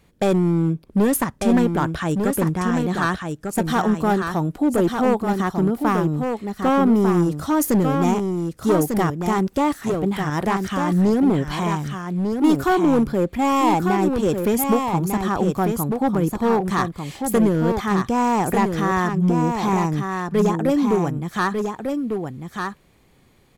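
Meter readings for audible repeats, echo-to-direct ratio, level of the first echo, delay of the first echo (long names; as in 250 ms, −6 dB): 1, −5.5 dB, −5.5 dB, 1,197 ms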